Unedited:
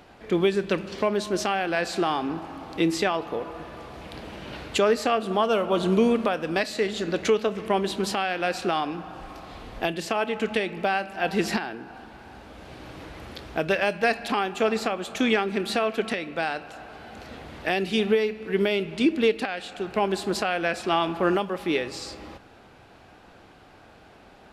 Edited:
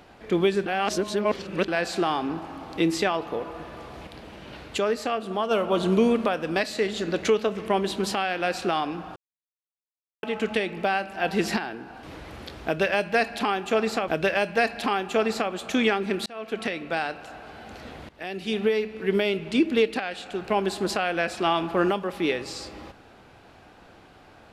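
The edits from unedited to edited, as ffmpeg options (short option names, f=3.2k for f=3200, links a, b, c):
-filter_complex "[0:a]asplit=11[a][b][c][d][e][f][g][h][i][j][k];[a]atrim=end=0.662[l];[b]atrim=start=0.658:end=1.682,asetpts=PTS-STARTPTS,areverse[m];[c]atrim=start=1.678:end=4.072[n];[d]atrim=start=4.068:end=5.512,asetpts=PTS-STARTPTS,volume=-4dB[o];[e]atrim=start=5.508:end=9.16,asetpts=PTS-STARTPTS,afade=t=out:st=3.648:d=0.004:c=hsin[p];[f]atrim=start=9.16:end=10.23,asetpts=PTS-STARTPTS,volume=0[q];[g]atrim=start=10.23:end=12.032,asetpts=PTS-STARTPTS,afade=t=in:d=0.004:c=hsin[r];[h]atrim=start=12.918:end=14.972[s];[i]atrim=start=13.538:end=15.72,asetpts=PTS-STARTPTS,afade=t=out:st=2.178:d=0.004:c=hsin[t];[j]atrim=start=15.72:end=17.55,asetpts=PTS-STARTPTS,afade=t=in:d=0.44,afade=t=out:st=1.826:d=0.004:c=hsin:silence=0.125893[u];[k]atrim=start=17.55,asetpts=PTS-STARTPTS,afade=t=in:d=0.73:silence=0.125893[v];[l][m]acrossfade=d=0.004:c1=hsin:c2=hsin[w];[w][n]acrossfade=d=0.004:c1=hsin:c2=hsin[x];[x][o]acrossfade=d=0.004:c1=hsin:c2=hsin[y];[p][q][r]concat=n=3:v=0:a=1[z];[y][z]acrossfade=d=0.004:c1=hsin:c2=hsin[aa];[aa][s]acrossfade=d=0.004:c1=hsin:c2=hsin[ab];[t][u][v]concat=n=3:v=0:a=1[ac];[ab][ac]acrossfade=d=0.004:c1=hsin:c2=hsin"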